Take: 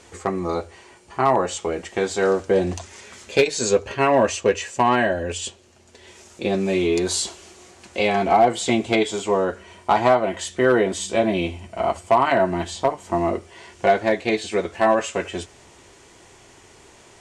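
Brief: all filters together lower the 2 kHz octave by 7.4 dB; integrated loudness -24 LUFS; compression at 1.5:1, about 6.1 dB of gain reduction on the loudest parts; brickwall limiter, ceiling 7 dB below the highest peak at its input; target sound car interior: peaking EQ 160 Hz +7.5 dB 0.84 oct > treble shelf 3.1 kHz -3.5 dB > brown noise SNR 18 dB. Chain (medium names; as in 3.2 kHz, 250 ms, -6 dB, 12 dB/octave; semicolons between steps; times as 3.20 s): peaking EQ 2 kHz -8.5 dB; compression 1.5:1, threshold -30 dBFS; peak limiter -18 dBFS; peaking EQ 160 Hz +7.5 dB 0.84 oct; treble shelf 3.1 kHz -3.5 dB; brown noise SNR 18 dB; trim +5 dB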